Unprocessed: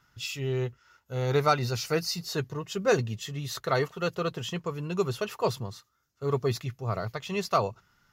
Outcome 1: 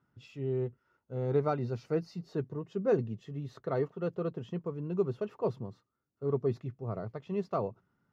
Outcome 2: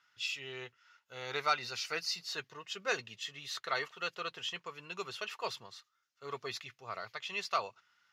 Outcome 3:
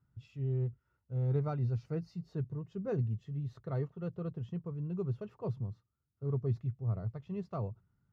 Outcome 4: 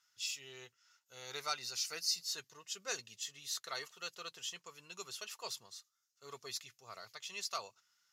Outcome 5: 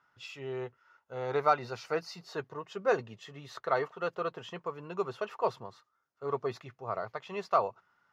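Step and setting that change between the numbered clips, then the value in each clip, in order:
band-pass, frequency: 270, 2700, 100, 7000, 890 Hz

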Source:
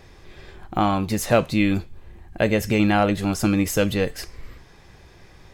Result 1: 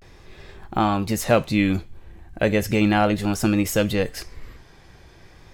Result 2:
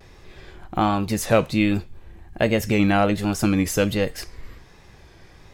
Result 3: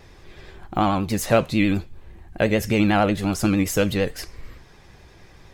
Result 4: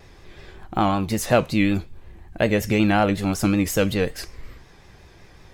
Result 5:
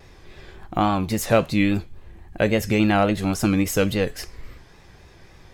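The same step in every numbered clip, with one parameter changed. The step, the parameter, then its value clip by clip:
vibrato, rate: 0.36, 1.3, 11, 5.4, 3.6 Hz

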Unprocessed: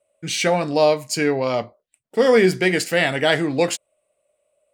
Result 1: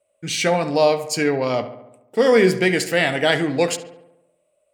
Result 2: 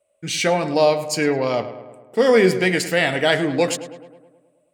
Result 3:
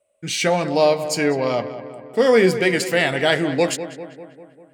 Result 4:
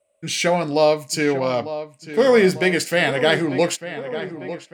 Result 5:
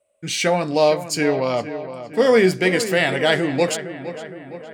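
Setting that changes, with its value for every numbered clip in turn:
darkening echo, time: 70, 106, 198, 897, 463 ms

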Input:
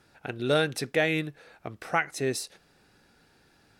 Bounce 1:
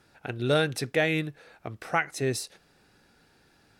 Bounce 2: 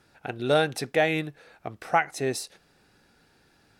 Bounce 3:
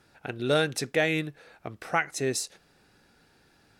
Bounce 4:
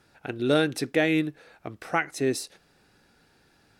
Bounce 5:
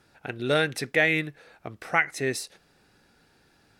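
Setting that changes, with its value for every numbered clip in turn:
dynamic EQ, frequency: 110, 770, 6900, 300, 2000 Hz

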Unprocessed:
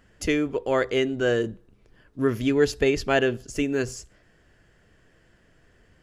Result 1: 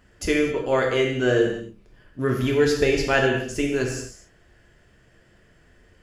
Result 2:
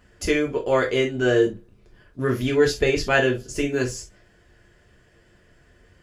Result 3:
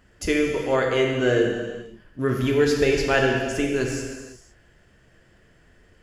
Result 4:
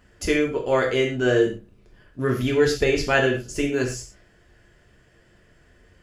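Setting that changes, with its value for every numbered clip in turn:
non-linear reverb, gate: 290, 90, 540, 150 ms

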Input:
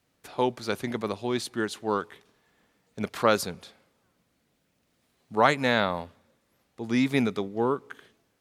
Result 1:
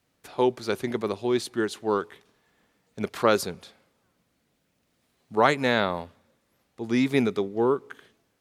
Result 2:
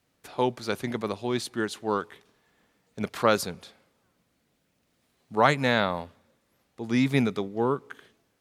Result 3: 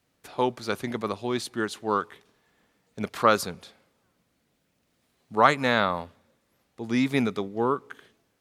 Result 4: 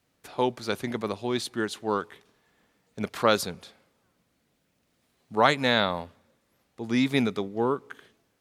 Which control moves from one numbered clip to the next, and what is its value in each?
dynamic EQ, frequency: 380, 140, 1200, 3600 Hz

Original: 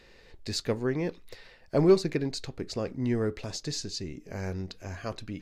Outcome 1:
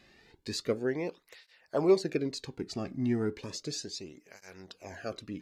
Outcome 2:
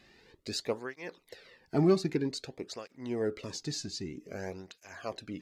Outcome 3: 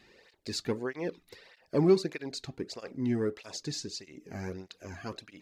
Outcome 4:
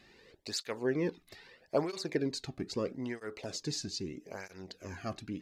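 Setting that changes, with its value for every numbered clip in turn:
tape flanging out of phase, nulls at: 0.34, 0.52, 1.6, 0.78 Hz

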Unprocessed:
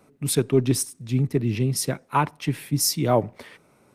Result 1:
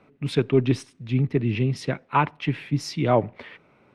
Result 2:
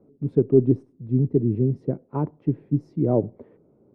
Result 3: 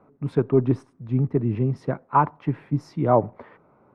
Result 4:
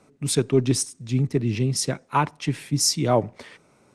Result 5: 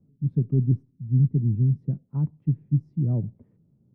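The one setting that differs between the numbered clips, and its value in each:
synth low-pass, frequency: 2800, 410, 1100, 7400, 160 Hz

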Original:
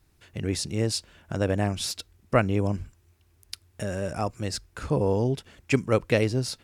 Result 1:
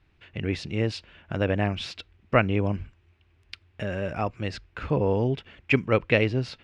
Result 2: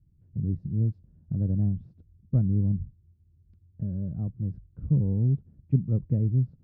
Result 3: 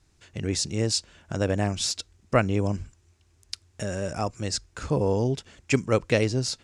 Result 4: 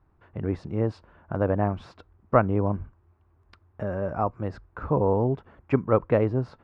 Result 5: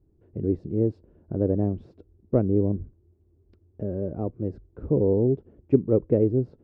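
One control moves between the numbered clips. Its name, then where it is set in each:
synth low-pass, frequency: 2700, 160, 7100, 1100, 390 Hz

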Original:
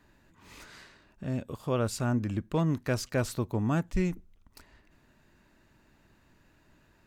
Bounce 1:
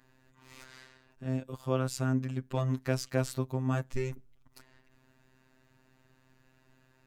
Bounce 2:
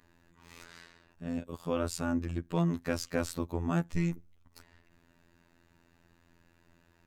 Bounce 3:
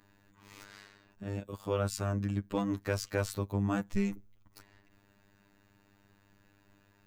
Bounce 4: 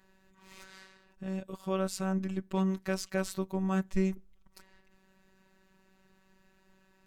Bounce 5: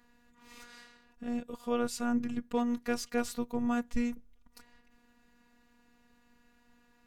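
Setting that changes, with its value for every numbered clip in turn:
robotiser, frequency: 130, 85, 100, 190, 240 Hz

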